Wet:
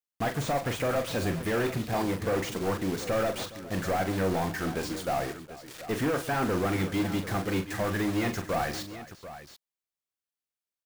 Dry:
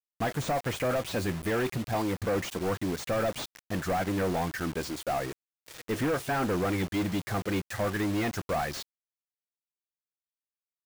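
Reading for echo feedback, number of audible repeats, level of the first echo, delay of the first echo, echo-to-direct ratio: no regular repeats, 4, -8.5 dB, 42 ms, -6.5 dB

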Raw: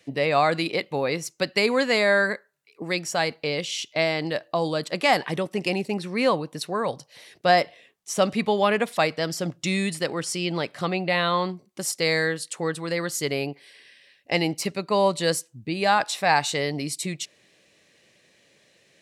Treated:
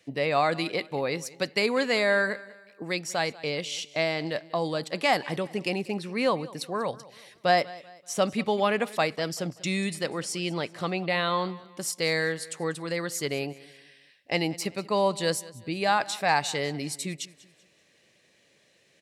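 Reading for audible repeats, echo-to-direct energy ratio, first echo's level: 2, -19.5 dB, -20.0 dB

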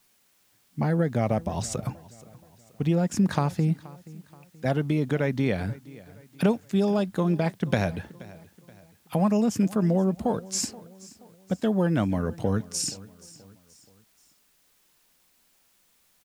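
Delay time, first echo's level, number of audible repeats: 477 ms, -20.5 dB, 3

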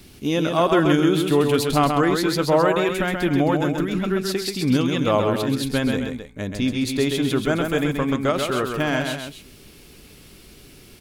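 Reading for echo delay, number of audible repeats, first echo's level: 132 ms, 2, -5.0 dB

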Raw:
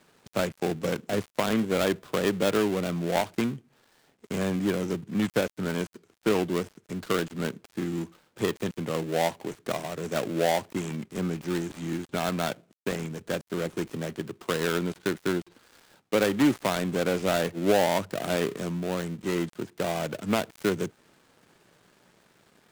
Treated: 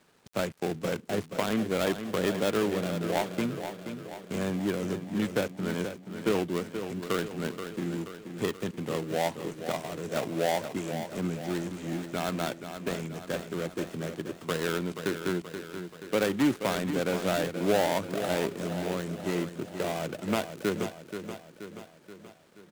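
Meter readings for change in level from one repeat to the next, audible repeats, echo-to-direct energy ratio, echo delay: -5.0 dB, 6, -7.5 dB, 479 ms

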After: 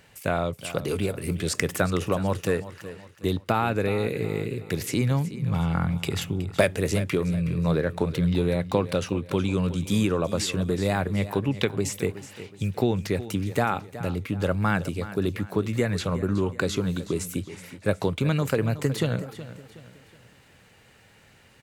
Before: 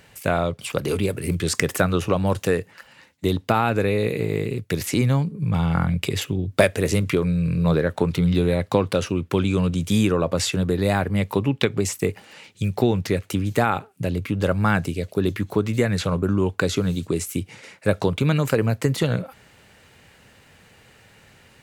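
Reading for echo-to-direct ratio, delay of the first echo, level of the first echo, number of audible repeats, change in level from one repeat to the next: -14.0 dB, 370 ms, -14.5 dB, 3, -8.0 dB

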